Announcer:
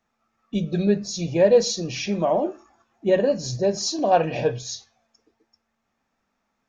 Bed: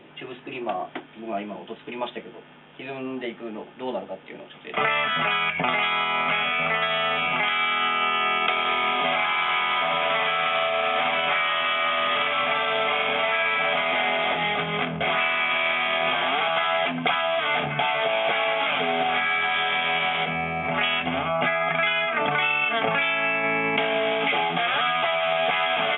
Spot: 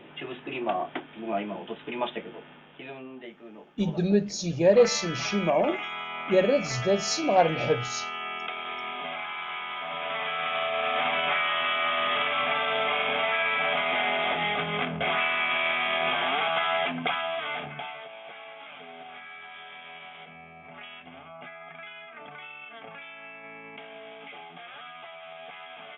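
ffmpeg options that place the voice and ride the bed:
ffmpeg -i stem1.wav -i stem2.wav -filter_complex "[0:a]adelay=3250,volume=-2.5dB[link_01];[1:a]volume=8.5dB,afade=type=out:start_time=2.44:duration=0.64:silence=0.266073,afade=type=in:start_time=9.81:duration=1.25:silence=0.375837,afade=type=out:start_time=16.76:duration=1.33:silence=0.133352[link_02];[link_01][link_02]amix=inputs=2:normalize=0" out.wav

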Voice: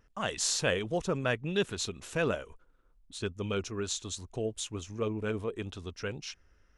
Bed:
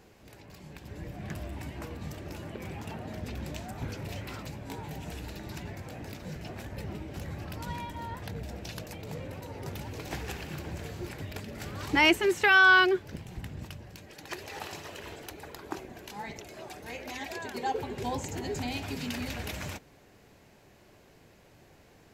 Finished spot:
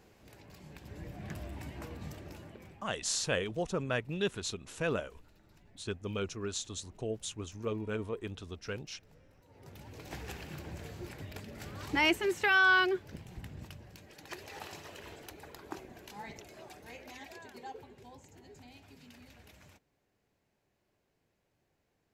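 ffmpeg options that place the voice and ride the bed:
ffmpeg -i stem1.wav -i stem2.wav -filter_complex "[0:a]adelay=2650,volume=-3dB[link_01];[1:a]volume=14dB,afade=type=out:start_time=2.05:duration=0.84:silence=0.105925,afade=type=in:start_time=9.43:duration=0.86:silence=0.125893,afade=type=out:start_time=16.37:duration=1.7:silence=0.177828[link_02];[link_01][link_02]amix=inputs=2:normalize=0" out.wav

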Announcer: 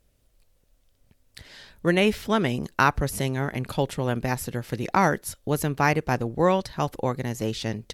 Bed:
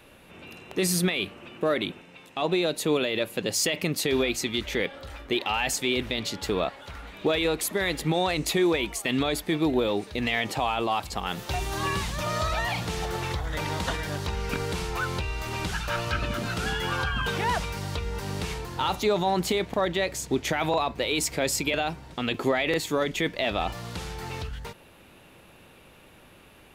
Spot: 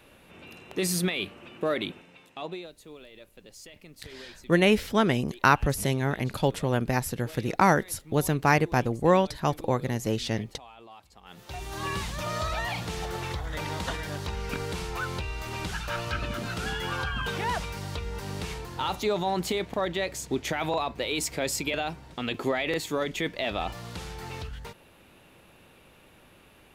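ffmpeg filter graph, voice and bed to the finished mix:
ffmpeg -i stem1.wav -i stem2.wav -filter_complex "[0:a]adelay=2650,volume=0dB[link_01];[1:a]volume=17dB,afade=type=out:start_time=1.97:duration=0.75:silence=0.1,afade=type=in:start_time=11.22:duration=0.75:silence=0.105925[link_02];[link_01][link_02]amix=inputs=2:normalize=0" out.wav

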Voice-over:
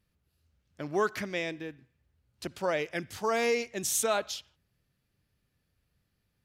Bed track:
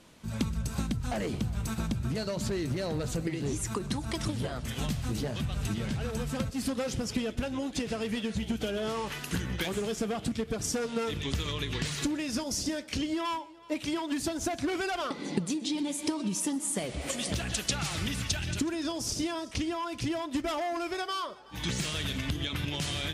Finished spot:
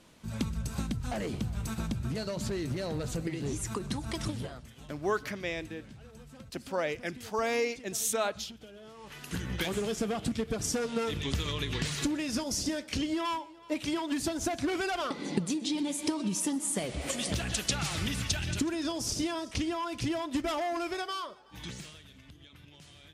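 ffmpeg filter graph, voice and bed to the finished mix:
ffmpeg -i stem1.wav -i stem2.wav -filter_complex "[0:a]adelay=4100,volume=-2dB[link_01];[1:a]volume=15.5dB,afade=type=out:start_time=4.29:duration=0.41:silence=0.16788,afade=type=in:start_time=8.98:duration=0.64:silence=0.133352,afade=type=out:start_time=20.81:duration=1.21:silence=0.0891251[link_02];[link_01][link_02]amix=inputs=2:normalize=0" out.wav

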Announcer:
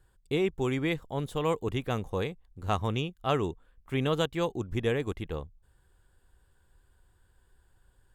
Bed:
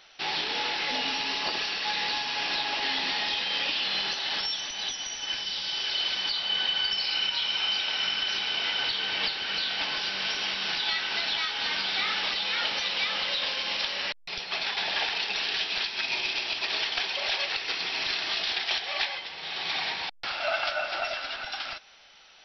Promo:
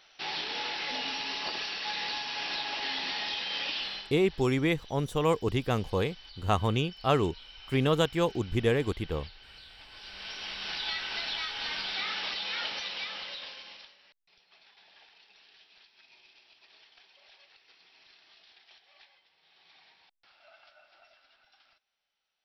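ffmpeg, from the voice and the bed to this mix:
ffmpeg -i stem1.wav -i stem2.wav -filter_complex "[0:a]adelay=3800,volume=2.5dB[link_01];[1:a]volume=11.5dB,afade=type=out:start_time=3.79:duration=0.32:silence=0.141254,afade=type=in:start_time=9.89:duration=0.93:silence=0.149624,afade=type=out:start_time=12.58:duration=1.39:silence=0.0595662[link_02];[link_01][link_02]amix=inputs=2:normalize=0" out.wav

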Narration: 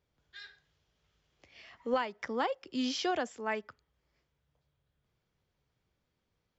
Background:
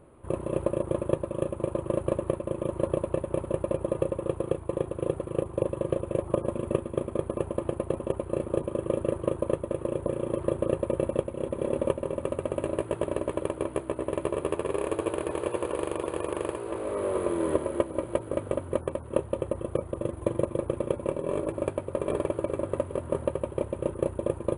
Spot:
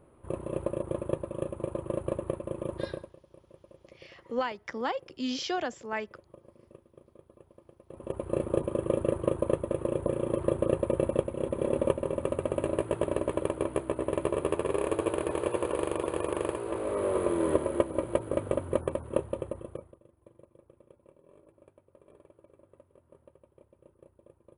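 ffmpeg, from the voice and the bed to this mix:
ffmpeg -i stem1.wav -i stem2.wav -filter_complex "[0:a]adelay=2450,volume=0.5dB[link_01];[1:a]volume=21.5dB,afade=type=out:start_time=2.73:duration=0.4:silence=0.0841395,afade=type=in:start_time=7.88:duration=0.48:silence=0.0501187,afade=type=out:start_time=18.95:duration=1.04:silence=0.0354813[link_02];[link_01][link_02]amix=inputs=2:normalize=0" out.wav

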